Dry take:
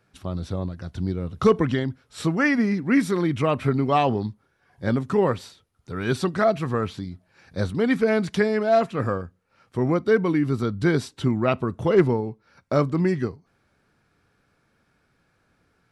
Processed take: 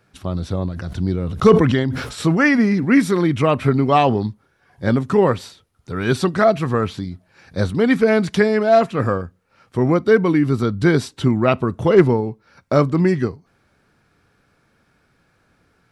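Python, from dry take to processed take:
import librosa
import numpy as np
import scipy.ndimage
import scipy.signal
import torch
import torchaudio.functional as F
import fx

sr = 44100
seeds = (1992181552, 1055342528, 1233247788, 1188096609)

y = fx.sustainer(x, sr, db_per_s=55.0, at=(0.74, 2.85), fade=0.02)
y = y * librosa.db_to_amplitude(5.5)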